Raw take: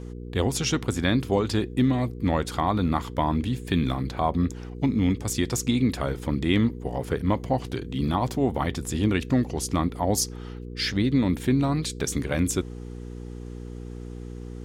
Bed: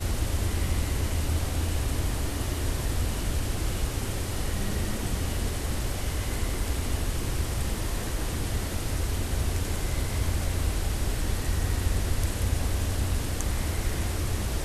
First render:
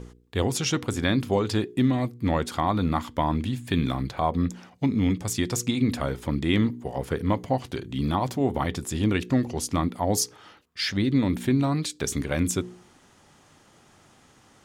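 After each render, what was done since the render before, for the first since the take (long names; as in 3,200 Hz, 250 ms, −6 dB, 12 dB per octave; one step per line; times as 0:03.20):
hum removal 60 Hz, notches 8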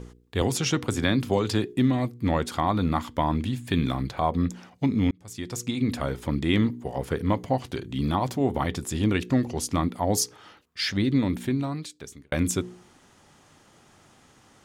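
0:00.41–0:01.73: multiband upward and downward compressor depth 40%
0:05.11–0:06.37: fade in equal-power
0:11.10–0:12.32: fade out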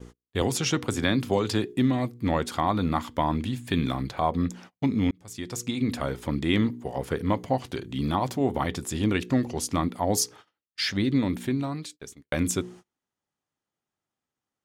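noise gate −44 dBFS, range −32 dB
low-shelf EQ 120 Hz −4.5 dB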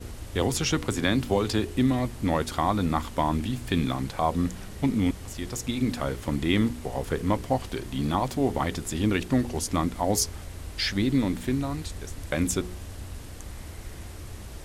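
mix in bed −11.5 dB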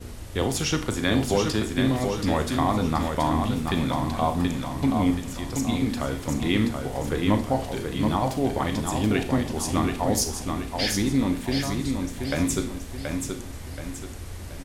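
repeating echo 728 ms, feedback 42%, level −5 dB
four-comb reverb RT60 0.39 s, combs from 26 ms, DRR 8 dB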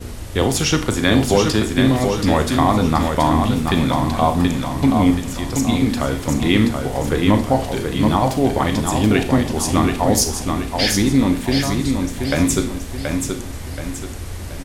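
level +7.5 dB
brickwall limiter −1 dBFS, peak gain reduction 2 dB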